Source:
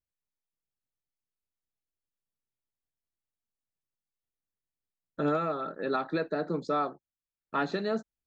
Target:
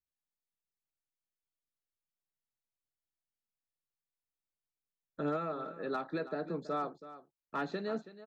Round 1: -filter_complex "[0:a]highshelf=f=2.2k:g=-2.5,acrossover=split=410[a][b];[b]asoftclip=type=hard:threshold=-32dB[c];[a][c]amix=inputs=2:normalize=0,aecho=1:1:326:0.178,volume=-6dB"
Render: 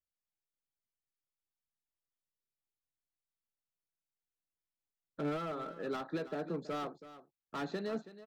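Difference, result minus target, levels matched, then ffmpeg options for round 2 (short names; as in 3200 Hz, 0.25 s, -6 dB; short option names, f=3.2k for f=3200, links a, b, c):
hard clip: distortion +23 dB
-filter_complex "[0:a]highshelf=f=2.2k:g=-2.5,acrossover=split=410[a][b];[b]asoftclip=type=hard:threshold=-22.5dB[c];[a][c]amix=inputs=2:normalize=0,aecho=1:1:326:0.178,volume=-6dB"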